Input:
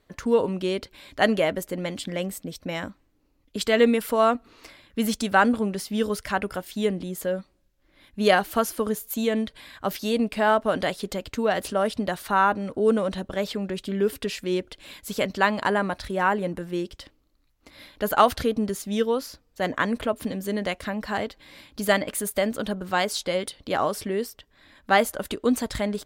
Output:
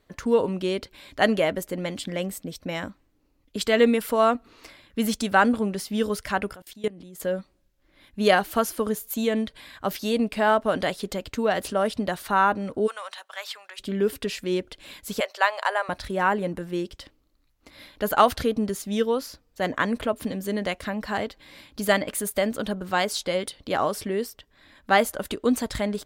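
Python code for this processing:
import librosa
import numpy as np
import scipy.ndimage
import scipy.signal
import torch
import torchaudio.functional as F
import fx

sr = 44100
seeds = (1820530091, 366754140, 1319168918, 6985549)

y = fx.level_steps(x, sr, step_db=22, at=(6.53, 7.2))
y = fx.highpass(y, sr, hz=900.0, slope=24, at=(12.86, 13.78), fade=0.02)
y = fx.steep_highpass(y, sr, hz=530.0, slope=36, at=(15.2, 15.89))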